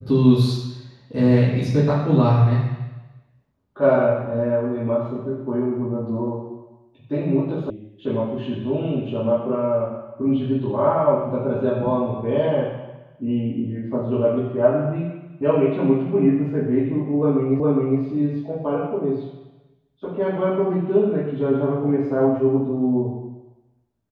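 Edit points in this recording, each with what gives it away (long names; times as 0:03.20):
0:07.70: cut off before it has died away
0:17.60: the same again, the last 0.41 s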